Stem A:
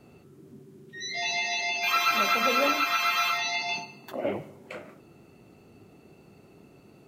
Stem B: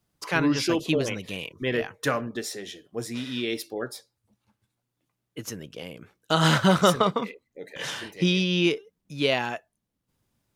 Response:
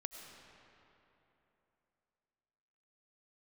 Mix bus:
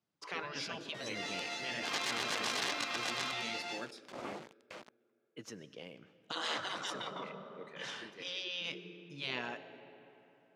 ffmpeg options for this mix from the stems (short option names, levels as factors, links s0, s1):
-filter_complex "[0:a]bandreject=f=60:t=h:w=6,bandreject=f=120:t=h:w=6,bandreject=f=180:t=h:w=6,bandreject=f=240:t=h:w=6,bandreject=f=300:t=h:w=6,bandreject=f=360:t=h:w=6,acrusher=bits=4:dc=4:mix=0:aa=0.000001,volume=0.531[s0];[1:a]volume=0.237,asplit=2[s1][s2];[s2]volume=0.596[s3];[2:a]atrim=start_sample=2205[s4];[s3][s4]afir=irnorm=-1:irlink=0[s5];[s0][s1][s5]amix=inputs=3:normalize=0,afftfilt=real='re*lt(hypot(re,im),0.0708)':imag='im*lt(hypot(re,im),0.0708)':win_size=1024:overlap=0.75,highpass=170,lowpass=5600"